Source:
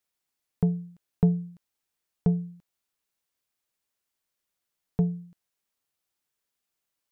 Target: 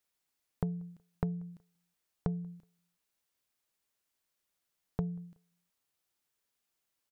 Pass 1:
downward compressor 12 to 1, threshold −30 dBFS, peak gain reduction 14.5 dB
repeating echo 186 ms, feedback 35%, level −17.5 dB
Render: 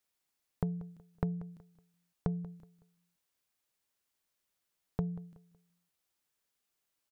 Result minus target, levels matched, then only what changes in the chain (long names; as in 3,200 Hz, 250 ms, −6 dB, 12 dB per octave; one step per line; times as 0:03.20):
echo-to-direct +11.5 dB
change: repeating echo 186 ms, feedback 35%, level −29 dB